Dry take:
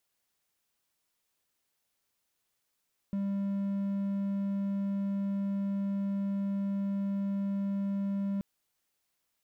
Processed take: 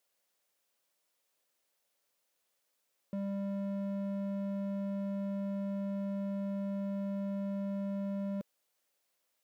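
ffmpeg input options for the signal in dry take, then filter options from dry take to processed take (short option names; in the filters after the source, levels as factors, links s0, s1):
-f lavfi -i "aevalsrc='0.0447*(1-4*abs(mod(198*t+0.25,1)-0.5))':d=5.28:s=44100"
-af "highpass=f=280:p=1,equalizer=f=550:t=o:w=0.5:g=8"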